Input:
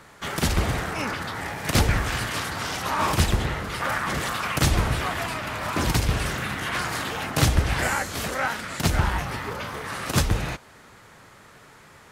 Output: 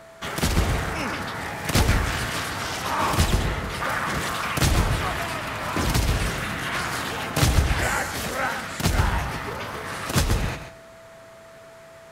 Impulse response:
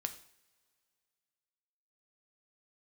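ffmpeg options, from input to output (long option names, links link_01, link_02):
-filter_complex "[0:a]asplit=2[link_01][link_02];[1:a]atrim=start_sample=2205,adelay=131[link_03];[link_02][link_03]afir=irnorm=-1:irlink=0,volume=-8dB[link_04];[link_01][link_04]amix=inputs=2:normalize=0,aeval=exprs='val(0)+0.00562*sin(2*PI*660*n/s)':channel_layout=same"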